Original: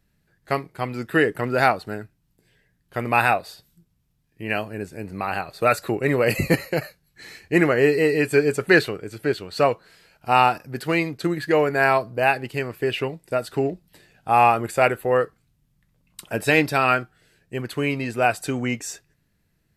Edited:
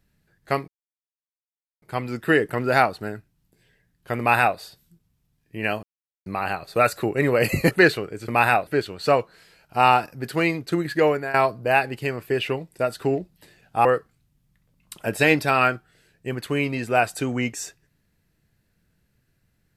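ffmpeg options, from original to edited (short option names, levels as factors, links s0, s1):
-filter_complex "[0:a]asplit=9[s0][s1][s2][s3][s4][s5][s6][s7][s8];[s0]atrim=end=0.68,asetpts=PTS-STARTPTS,afade=t=out:st=0.676:d=0.004:c=hsin,apad=pad_dur=1.14[s9];[s1]atrim=start=0.68:end=4.69,asetpts=PTS-STARTPTS,afade=t=in:d=0.004:c=hsin,afade=t=out:st=4.006:d=0.004:c=hsin[s10];[s2]atrim=start=4.69:end=5.12,asetpts=PTS-STARTPTS,volume=0[s11];[s3]atrim=start=5.12:end=6.572,asetpts=PTS-STARTPTS,afade=t=in:d=0.004:c=hsin[s12];[s4]atrim=start=8.618:end=9.192[s13];[s5]atrim=start=3.048:end=3.442[s14];[s6]atrim=start=9.188:end=11.86,asetpts=PTS-STARTPTS,afade=t=out:st=2.402:d=0.27:silence=0.141254[s15];[s7]atrim=start=11.86:end=14.372,asetpts=PTS-STARTPTS,afade=t=in:d=0.004:c=hsin:silence=0.141254[s16];[s8]atrim=start=15.118[s17];[s9][s10][s11][s12]concat=n=4:v=0:a=1[s18];[s18][s13]acrossfade=d=0.004:c1=hsin:c2=hsin[s19];[s19][s14]acrossfade=d=0.004:c1=hsin:c2=hsin[s20];[s15][s16]concat=n=2:v=0:a=1[s21];[s20][s21]acrossfade=d=0.004:c1=hsin:c2=hsin[s22];[s22][s17]acrossfade=d=0.004:c1=hsin:c2=hsin"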